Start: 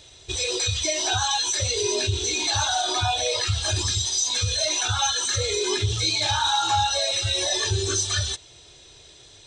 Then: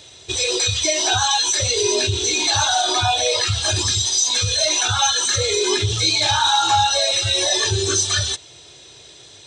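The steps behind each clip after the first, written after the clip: HPF 99 Hz 12 dB/oct; gain +5.5 dB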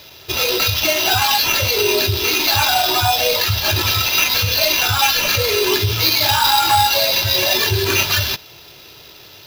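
sample-rate reducer 8700 Hz, jitter 0%; gain +2.5 dB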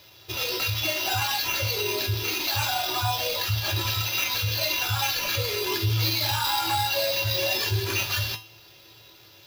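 resonator 110 Hz, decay 0.33 s, harmonics odd, mix 80%

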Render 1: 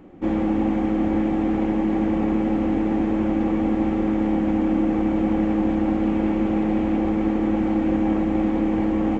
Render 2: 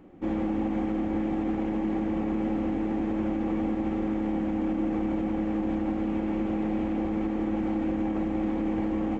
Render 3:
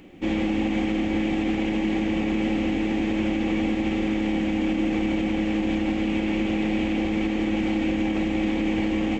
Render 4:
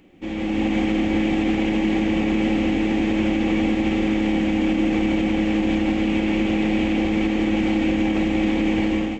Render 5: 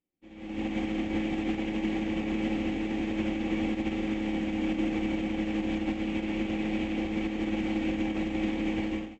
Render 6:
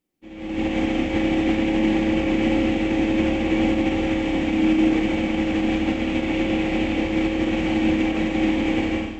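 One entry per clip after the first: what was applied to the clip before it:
limiter -14.5 dBFS, peak gain reduction 5 dB; gain -5.5 dB
resonant high shelf 1800 Hz +11 dB, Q 1.5; gain +4 dB
AGC gain up to 9.5 dB; gain -5.5 dB
upward expander 2.5:1, over -39 dBFS; gain -7 dB
Schroeder reverb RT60 1.2 s, combs from 28 ms, DRR 4 dB; gain +8.5 dB

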